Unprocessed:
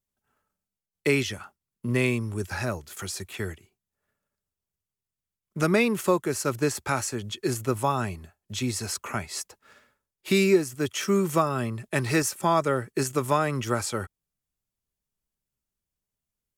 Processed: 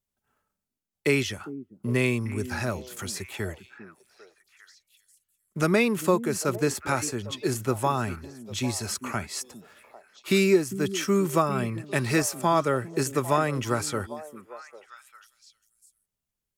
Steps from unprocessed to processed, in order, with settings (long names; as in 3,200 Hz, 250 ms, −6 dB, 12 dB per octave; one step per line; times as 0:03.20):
echo through a band-pass that steps 400 ms, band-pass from 240 Hz, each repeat 1.4 octaves, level −9 dB